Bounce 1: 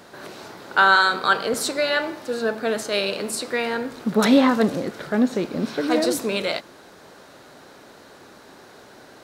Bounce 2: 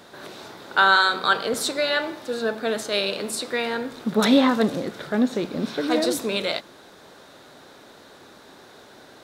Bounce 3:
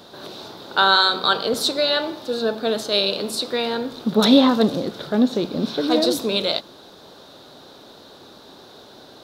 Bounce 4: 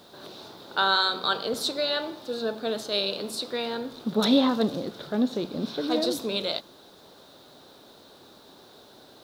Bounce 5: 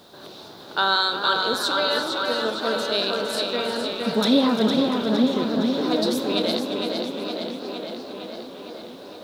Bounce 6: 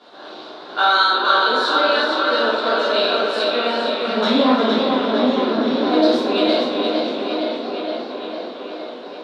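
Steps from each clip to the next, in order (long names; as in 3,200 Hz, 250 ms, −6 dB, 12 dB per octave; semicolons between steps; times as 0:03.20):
parametric band 3,600 Hz +7 dB 0.21 octaves; hum removal 62.45 Hz, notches 3; level −1.5 dB
octave-band graphic EQ 2,000/4,000/8,000 Hz −10/+7/−7 dB; level +3.5 dB
bit reduction 9 bits; level −7 dB
tape delay 461 ms, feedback 77%, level −3.5 dB, low-pass 5,600 Hz; feedback echo with a swinging delay time 350 ms, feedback 59%, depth 94 cents, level −10.5 dB; level +2 dB
soft clipping −10.5 dBFS, distortion −23 dB; band-pass filter 390–3,400 Hz; rectangular room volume 240 cubic metres, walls mixed, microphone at 3.2 metres; level −1.5 dB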